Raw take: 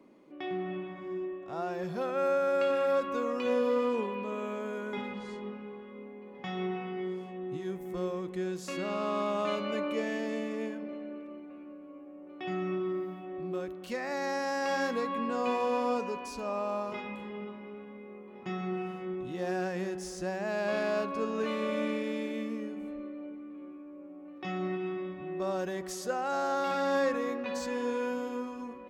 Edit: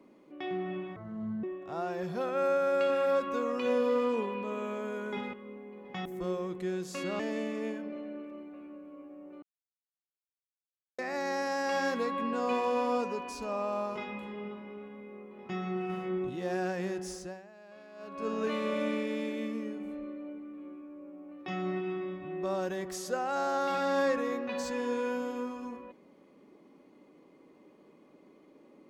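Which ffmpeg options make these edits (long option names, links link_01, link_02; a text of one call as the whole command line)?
ffmpeg -i in.wav -filter_complex "[0:a]asplit=12[link_01][link_02][link_03][link_04][link_05][link_06][link_07][link_08][link_09][link_10][link_11][link_12];[link_01]atrim=end=0.964[link_13];[link_02]atrim=start=0.96:end=1.24,asetpts=PTS-STARTPTS,asetrate=26019,aresample=44100[link_14];[link_03]atrim=start=1.236:end=5.142[link_15];[link_04]atrim=start=5.828:end=6.552[link_16];[link_05]atrim=start=7.788:end=8.932[link_17];[link_06]atrim=start=10.158:end=12.39,asetpts=PTS-STARTPTS,afade=type=out:start_time=2.228:duration=0.004:curve=hsin[link_18];[link_07]atrim=start=12.39:end=13.95,asetpts=PTS-STARTPTS,volume=0[link_19];[link_08]atrim=start=13.95:end=18.862,asetpts=PTS-STARTPTS,afade=type=in:duration=0.004:curve=hsin[link_20];[link_09]atrim=start=18.858:end=19.262,asetpts=PTS-STARTPTS,volume=3.5dB[link_21];[link_10]atrim=start=19.258:end=20.51,asetpts=PTS-STARTPTS,afade=type=out:start_time=0.842:duration=0.41:curve=qua:silence=0.0841395[link_22];[link_11]atrim=start=20.51:end=20.86,asetpts=PTS-STARTPTS,volume=-21.5dB[link_23];[link_12]atrim=start=20.86,asetpts=PTS-STARTPTS,afade=type=in:duration=0.41:curve=qua:silence=0.0841395[link_24];[link_13][link_14]acrossfade=duration=0.004:curve1=hsin:curve2=hsin[link_25];[link_25][link_15]acrossfade=duration=0.004:curve1=hsin:curve2=hsin[link_26];[link_26][link_16]acrossfade=duration=0.004:curve1=hsin:curve2=hsin[link_27];[link_27][link_17]acrossfade=duration=0.004:curve1=hsin:curve2=hsin[link_28];[link_18][link_19][link_20]concat=n=3:v=0:a=1[link_29];[link_28][link_29]acrossfade=duration=0.004:curve1=hsin:curve2=hsin[link_30];[link_30][link_21]acrossfade=duration=0.004:curve1=hsin:curve2=hsin[link_31];[link_22][link_23][link_24]concat=n=3:v=0:a=1[link_32];[link_31][link_32]acrossfade=duration=0.004:curve1=hsin:curve2=hsin" out.wav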